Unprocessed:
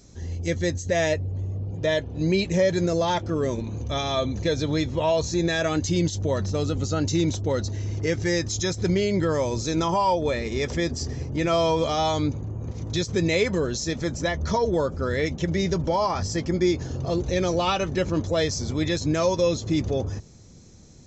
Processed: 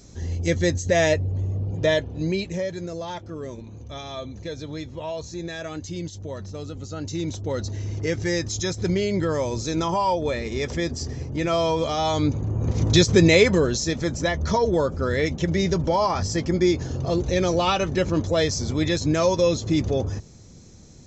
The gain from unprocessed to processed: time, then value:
1.87 s +3.5 dB
2.77 s -9 dB
6.84 s -9 dB
7.73 s -0.5 dB
12.01 s -0.5 dB
12.83 s +11 dB
13.97 s +2 dB

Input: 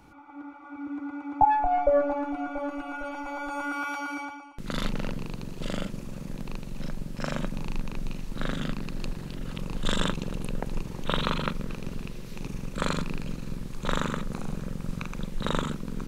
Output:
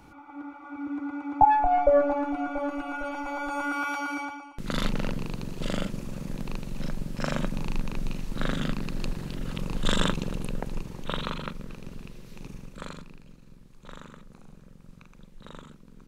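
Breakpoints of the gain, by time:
10.16 s +2 dB
11.44 s -6 dB
12.51 s -6 dB
13.21 s -17 dB

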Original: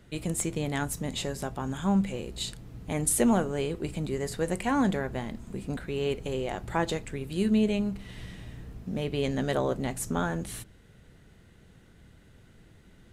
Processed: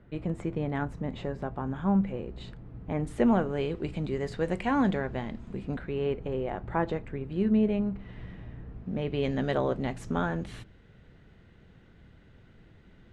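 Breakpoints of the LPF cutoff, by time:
2.92 s 1600 Hz
3.71 s 3500 Hz
5.52 s 3500 Hz
6.18 s 1700 Hz
8.65 s 1700 Hz
9.32 s 3400 Hz

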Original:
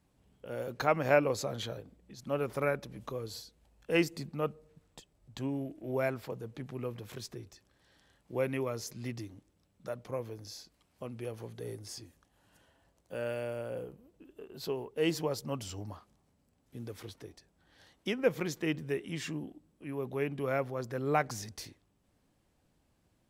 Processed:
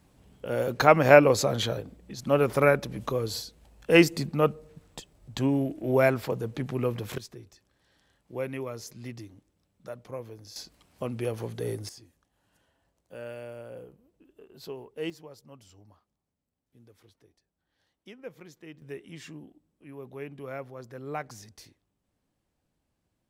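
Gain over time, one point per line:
+10 dB
from 7.18 s -1 dB
from 10.56 s +9 dB
from 11.89 s -4 dB
from 15.1 s -14 dB
from 18.82 s -6 dB

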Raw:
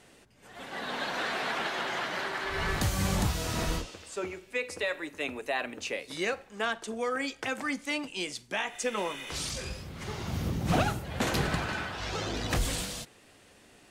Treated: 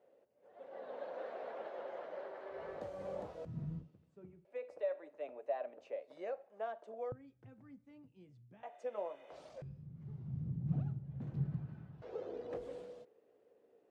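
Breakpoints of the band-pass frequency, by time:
band-pass, Q 5.8
540 Hz
from 3.45 s 150 Hz
from 4.45 s 610 Hz
from 7.12 s 120 Hz
from 8.63 s 620 Hz
from 9.62 s 140 Hz
from 12.02 s 470 Hz

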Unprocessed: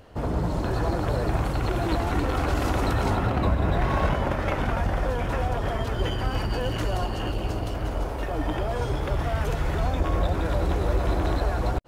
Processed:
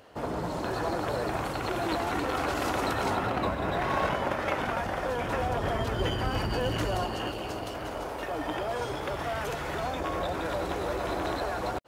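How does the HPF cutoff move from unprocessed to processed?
HPF 6 dB/oct
5.02 s 390 Hz
5.72 s 100 Hz
6.82 s 100 Hz
7.39 s 430 Hz

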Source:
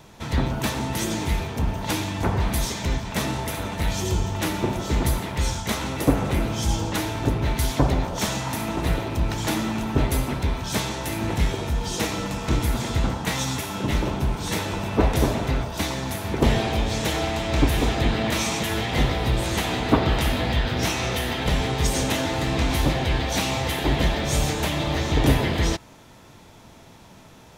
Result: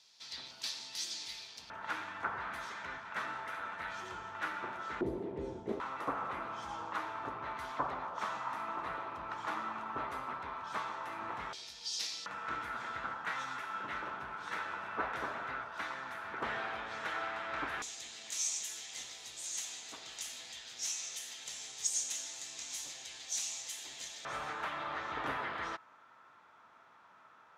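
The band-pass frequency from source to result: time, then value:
band-pass, Q 3.9
4700 Hz
from 1.7 s 1400 Hz
from 5.01 s 380 Hz
from 5.8 s 1200 Hz
from 11.53 s 4800 Hz
from 12.26 s 1400 Hz
from 17.82 s 6800 Hz
from 24.25 s 1300 Hz

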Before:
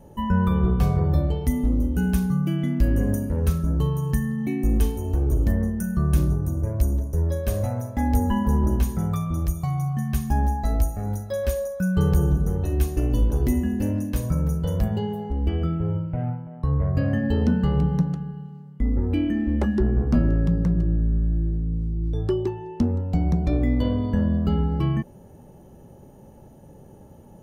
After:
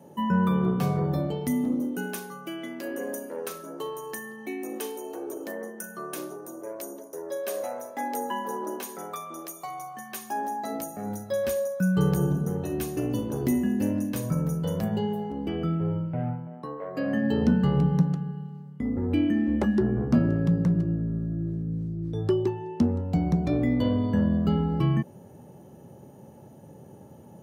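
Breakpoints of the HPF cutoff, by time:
HPF 24 dB/oct
1.59 s 150 Hz
2.22 s 360 Hz
10.32 s 360 Hz
11.31 s 130 Hz
16.45 s 130 Hz
16.8 s 370 Hz
17.48 s 98 Hz

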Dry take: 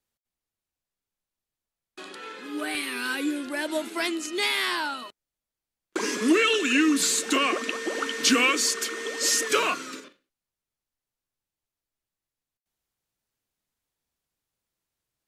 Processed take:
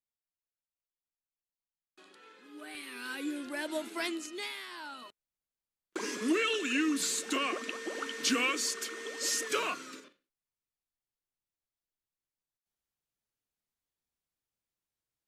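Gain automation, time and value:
2.56 s -16.5 dB
3.42 s -7 dB
4.16 s -7 dB
4.68 s -19 dB
5.06 s -8.5 dB

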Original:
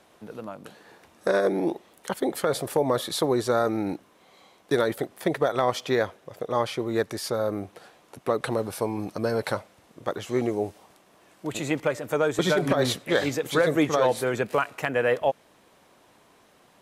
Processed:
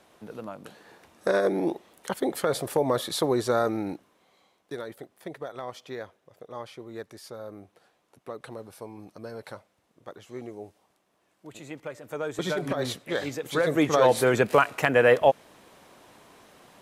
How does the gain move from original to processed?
3.64 s -1 dB
4.79 s -13.5 dB
11.75 s -13.5 dB
12.45 s -6 dB
13.36 s -6 dB
14.22 s +4.5 dB

